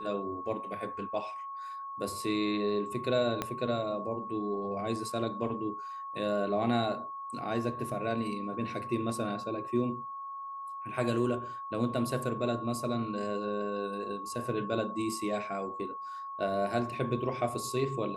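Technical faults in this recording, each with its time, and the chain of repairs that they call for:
whistle 1,100 Hz −38 dBFS
0:03.42: click −16 dBFS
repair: click removal
notch filter 1,100 Hz, Q 30

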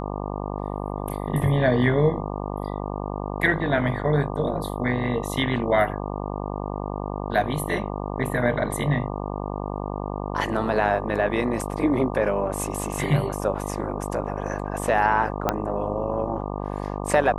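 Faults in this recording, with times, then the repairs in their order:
mains buzz 50 Hz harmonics 24 −30 dBFS
0:15.49: click −7 dBFS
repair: click removal
hum removal 50 Hz, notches 24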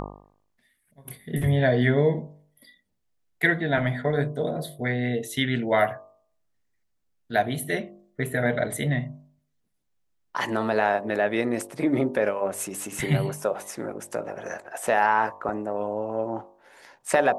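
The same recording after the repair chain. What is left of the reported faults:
0:15.49: click

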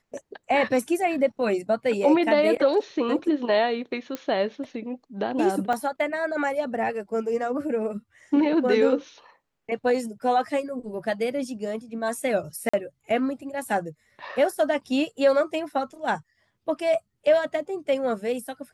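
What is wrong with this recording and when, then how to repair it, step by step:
0:04.15: click −16 dBFS
0:05.73: drop-out 3 ms
0:12.69–0:12.73: drop-out 45 ms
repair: click removal
repair the gap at 0:05.73, 3 ms
repair the gap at 0:12.69, 45 ms

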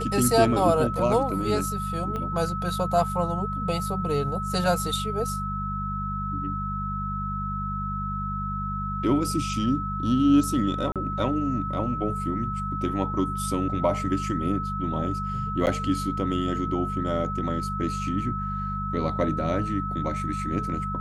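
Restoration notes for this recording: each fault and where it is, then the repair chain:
mains hum 50 Hz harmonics 4 −32 dBFS
whistle 1,300 Hz −30 dBFS
0:02.16: click −20 dBFS
0:10.92–0:10.96: drop-out 37 ms
0:15.66–0:15.67: drop-out 9.4 ms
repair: click removal
hum removal 50 Hz, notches 4
notch filter 1,300 Hz, Q 30
repair the gap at 0:10.92, 37 ms
repair the gap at 0:15.66, 9.4 ms

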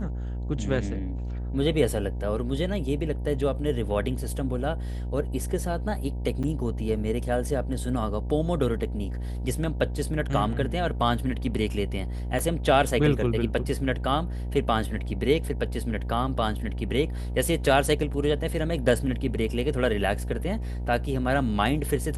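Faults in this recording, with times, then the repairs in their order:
mains buzz 60 Hz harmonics 16 −31 dBFS
0:06.43–0:06.44: drop-out 6.9 ms
0:12.39: drop-out 3.2 ms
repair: hum removal 60 Hz, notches 16
repair the gap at 0:06.43, 6.9 ms
repair the gap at 0:12.39, 3.2 ms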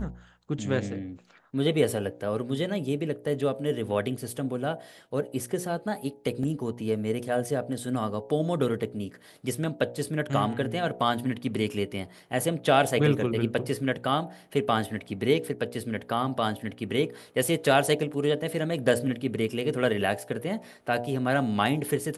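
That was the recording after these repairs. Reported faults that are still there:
none of them is left

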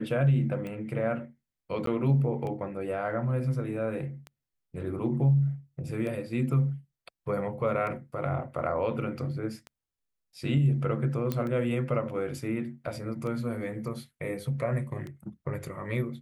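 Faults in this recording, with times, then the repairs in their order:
scratch tick 33 1/3 rpm −26 dBFS
0:01.86–0:01.87: drop-out 13 ms
0:11.32: click −16 dBFS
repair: click removal
repair the gap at 0:01.86, 13 ms

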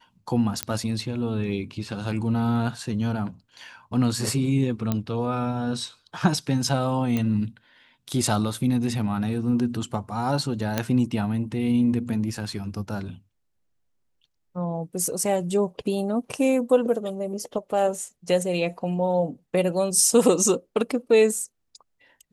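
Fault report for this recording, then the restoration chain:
0:00.63: click −7 dBFS
0:04.92: click −11 dBFS
0:07.17: click −13 dBFS
0:10.78: click −8 dBFS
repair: click removal

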